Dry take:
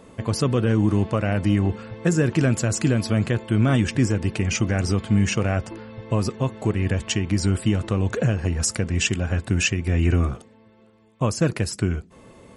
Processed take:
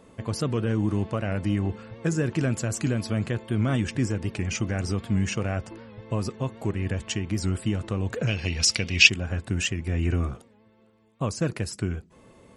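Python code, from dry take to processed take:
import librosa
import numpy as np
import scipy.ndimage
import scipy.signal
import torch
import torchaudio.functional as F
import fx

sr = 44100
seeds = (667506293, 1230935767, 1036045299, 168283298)

y = fx.band_shelf(x, sr, hz=3500.0, db=15.0, octaves=1.7, at=(8.27, 9.1))
y = fx.record_warp(y, sr, rpm=78.0, depth_cents=100.0)
y = y * 10.0 ** (-5.5 / 20.0)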